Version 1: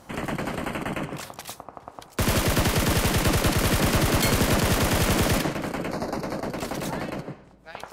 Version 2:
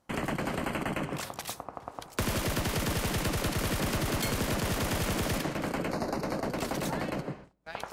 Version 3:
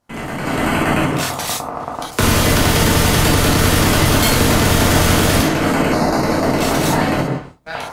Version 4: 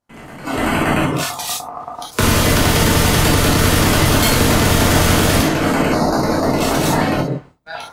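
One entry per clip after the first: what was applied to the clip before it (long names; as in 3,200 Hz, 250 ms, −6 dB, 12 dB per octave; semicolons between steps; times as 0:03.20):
downward compressor 5 to 1, threshold −28 dBFS, peak gain reduction 9.5 dB; noise gate with hold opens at −38 dBFS
automatic gain control gain up to 12 dB; reverb whose tail is shaped and stops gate 90 ms flat, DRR −3 dB
noise reduction from a noise print of the clip's start 10 dB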